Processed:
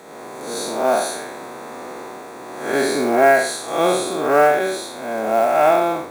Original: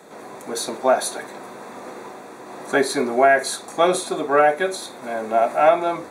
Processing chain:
spectrum smeared in time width 170 ms
hum removal 100.3 Hz, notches 3
log-companded quantiser 6 bits
level +5 dB

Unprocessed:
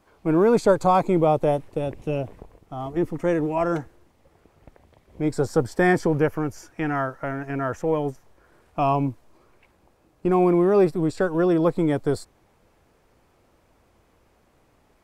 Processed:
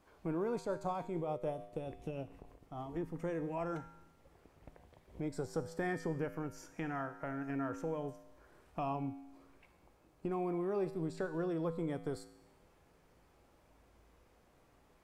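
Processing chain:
downward compressor 2 to 1, threshold −37 dBFS, peak gain reduction 13.5 dB
tuned comb filter 55 Hz, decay 0.98 s, harmonics odd, mix 70%
0:00.59–0:02.89: amplitude tremolo 6.8 Hz, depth 36%
level +3 dB

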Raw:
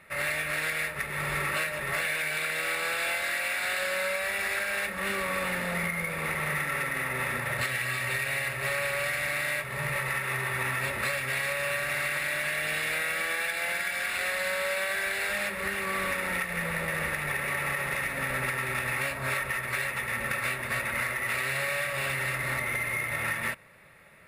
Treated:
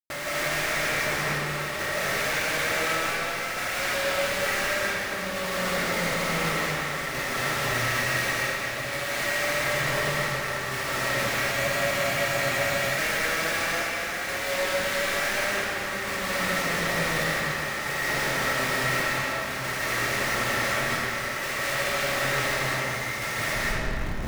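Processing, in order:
low-pass filter 2,000 Hz 6 dB per octave
low-shelf EQ 86 Hz −9 dB
notch filter 970 Hz, Q 12
reversed playback
upward compression, threshold −48 dBFS
reversed playback
comparator with hysteresis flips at −46.5 dBFS
square-wave tremolo 0.56 Hz, depth 60%, duty 65%
in parallel at −8 dB: wrap-around overflow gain 40 dB
on the sum: comb and all-pass reverb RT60 2.3 s, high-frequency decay 0.7×, pre-delay 120 ms, DRR −6.5 dB
frozen spectrum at 0:11.55, 1.42 s

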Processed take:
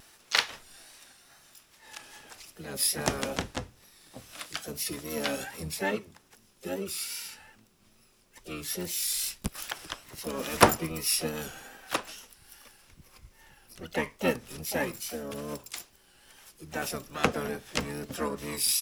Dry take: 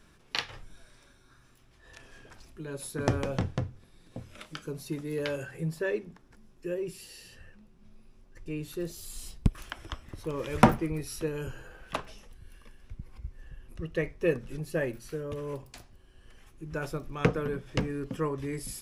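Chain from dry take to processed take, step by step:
RIAA equalisation recording
pitch-shifted copies added −12 semitones −3 dB, +3 semitones −9 dB, +7 semitones −12 dB
pitch vibrato 2.4 Hz 54 cents

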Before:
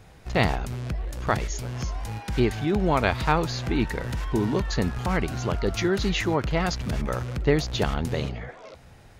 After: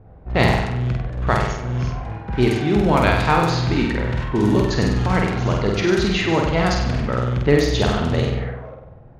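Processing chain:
flutter between parallel walls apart 8.3 metres, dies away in 0.93 s
low-pass that shuts in the quiet parts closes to 680 Hz, open at −15.5 dBFS
level +3.5 dB

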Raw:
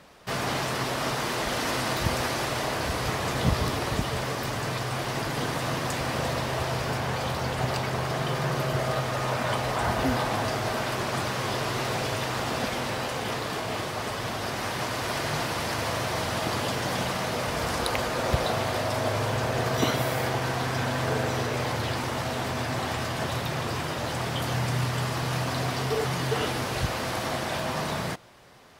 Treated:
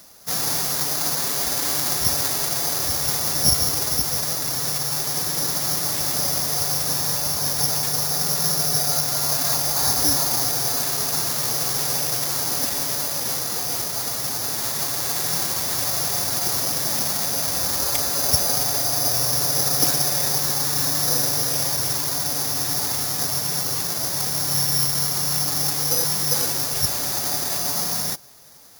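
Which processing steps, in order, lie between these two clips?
bad sample-rate conversion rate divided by 8×, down filtered, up zero stuff
phase-vocoder pitch shift with formants kept +2 semitones
level −2 dB

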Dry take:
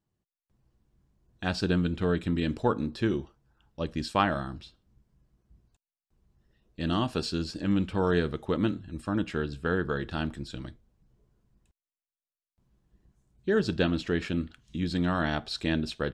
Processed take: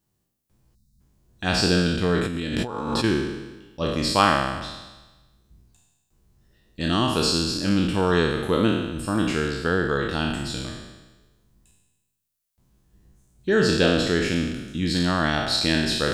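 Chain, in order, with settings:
peak hold with a decay on every bin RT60 1.15 s
high-shelf EQ 5,300 Hz +11.5 dB
0:00.75–0:01.01: gain on a spectral selection 240–3,600 Hz −19 dB
0:02.25–0:03.04: compressor whose output falls as the input rises −31 dBFS, ratio −1
level +3.5 dB

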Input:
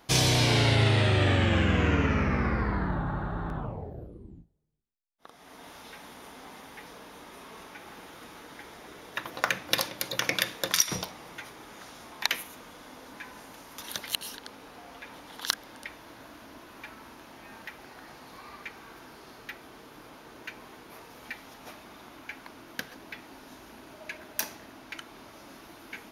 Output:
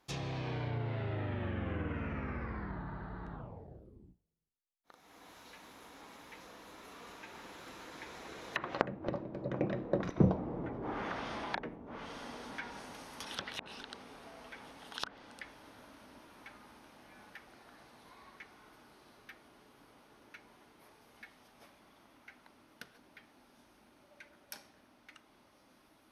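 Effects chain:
source passing by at 0:10.51, 23 m/s, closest 11 metres
treble cut that deepens with the level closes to 430 Hz, closed at −41.5 dBFS
level +13 dB

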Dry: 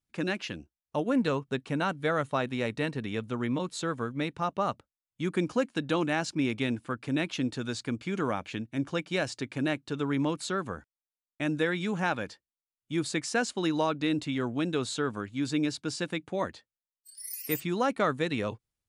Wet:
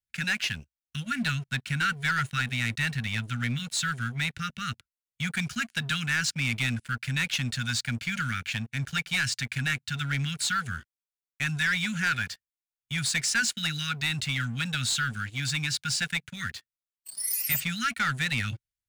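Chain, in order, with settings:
Chebyshev band-stop filter 230–1,400 Hz, order 5
parametric band 200 Hz −13.5 dB 0.7 octaves
leveller curve on the samples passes 3

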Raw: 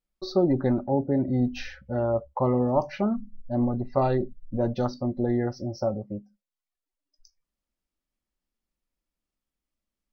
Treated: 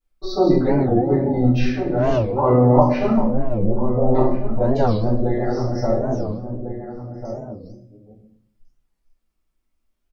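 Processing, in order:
delay that plays each chunk backwards 373 ms, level −8 dB
0:03.22–0:04.15: Chebyshev low-pass filter 540 Hz, order 3
slap from a distant wall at 240 metres, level −9 dB
convolution reverb RT60 0.60 s, pre-delay 3 ms, DRR −13 dB
wow of a warped record 45 rpm, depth 250 cents
level −5.5 dB

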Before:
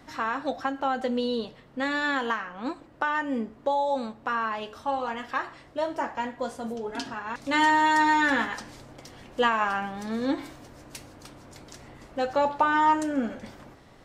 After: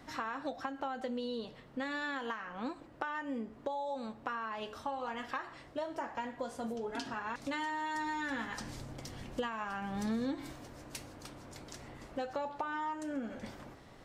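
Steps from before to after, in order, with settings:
downward compressor 10 to 1, threshold −32 dBFS, peak gain reduction 15.5 dB
0:07.95–0:10.52: bass and treble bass +7 dB, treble +3 dB
level −2.5 dB

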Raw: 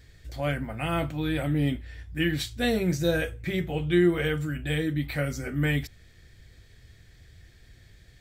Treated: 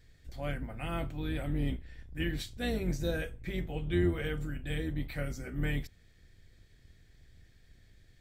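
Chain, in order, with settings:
sub-octave generator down 2 octaves, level +1 dB
level −9 dB

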